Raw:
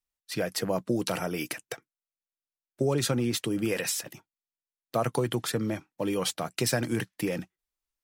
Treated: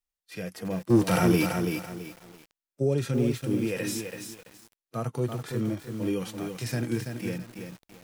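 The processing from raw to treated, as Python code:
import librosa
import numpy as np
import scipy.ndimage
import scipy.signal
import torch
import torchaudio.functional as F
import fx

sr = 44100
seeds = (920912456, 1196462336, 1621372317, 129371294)

y = fx.leveller(x, sr, passes=3, at=(0.9, 1.48))
y = fx.hpss(y, sr, part='percussive', gain_db=-17)
y = fx.echo_crushed(y, sr, ms=333, feedback_pct=35, bits=8, wet_db=-5.5)
y = y * 10.0 ** (2.5 / 20.0)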